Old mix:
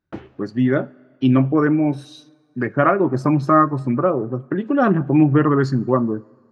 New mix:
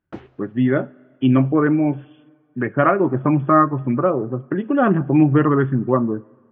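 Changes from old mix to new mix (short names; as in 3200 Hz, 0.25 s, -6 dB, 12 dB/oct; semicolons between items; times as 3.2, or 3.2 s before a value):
speech: add brick-wall FIR low-pass 3500 Hz; background: send off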